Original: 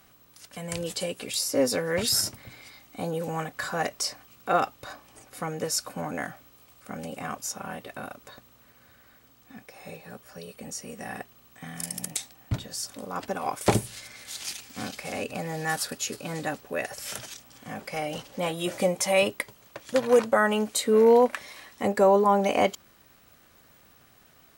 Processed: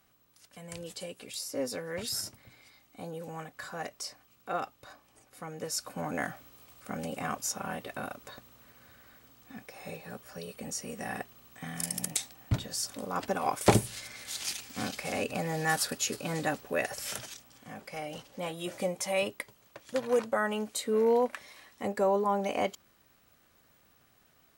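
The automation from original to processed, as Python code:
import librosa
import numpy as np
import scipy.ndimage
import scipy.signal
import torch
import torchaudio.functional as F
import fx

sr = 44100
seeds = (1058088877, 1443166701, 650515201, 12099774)

y = fx.gain(x, sr, db=fx.line((5.43, -10.0), (6.25, 0.0), (16.97, 0.0), (17.72, -7.5)))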